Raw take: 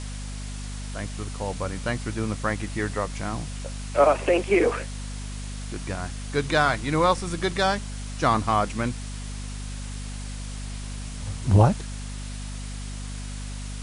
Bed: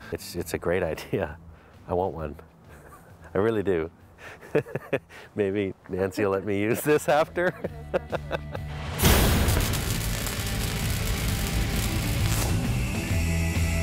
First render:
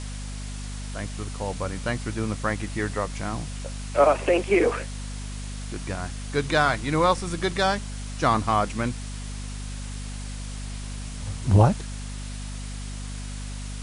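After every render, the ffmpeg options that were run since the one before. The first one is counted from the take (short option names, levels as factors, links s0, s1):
-af anull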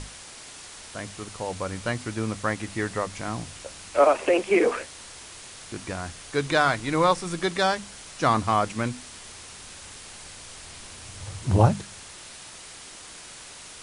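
-af "bandreject=f=50:t=h:w=6,bandreject=f=100:t=h:w=6,bandreject=f=150:t=h:w=6,bandreject=f=200:t=h:w=6,bandreject=f=250:t=h:w=6"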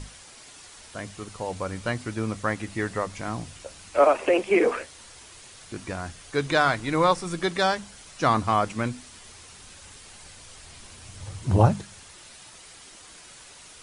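-af "afftdn=nr=6:nf=-44"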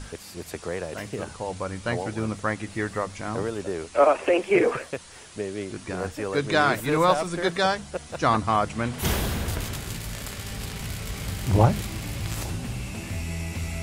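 -filter_complex "[1:a]volume=0.501[s0];[0:a][s0]amix=inputs=2:normalize=0"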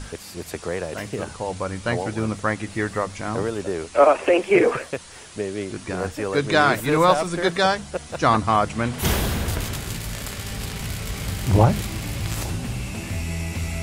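-af "volume=1.5,alimiter=limit=0.708:level=0:latency=1"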